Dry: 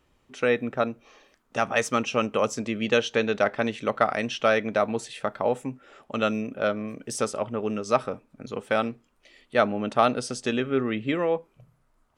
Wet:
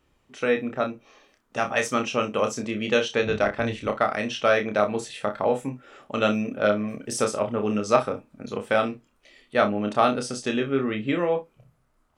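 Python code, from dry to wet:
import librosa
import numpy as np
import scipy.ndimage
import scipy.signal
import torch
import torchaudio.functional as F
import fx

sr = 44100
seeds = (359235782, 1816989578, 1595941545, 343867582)

p1 = fx.octave_divider(x, sr, octaves=1, level_db=-4.0, at=(3.23, 3.9))
p2 = p1 + fx.room_early_taps(p1, sr, ms=(29, 61), db=(-5.5, -16.0), dry=0)
y = fx.rider(p2, sr, range_db=4, speed_s=2.0)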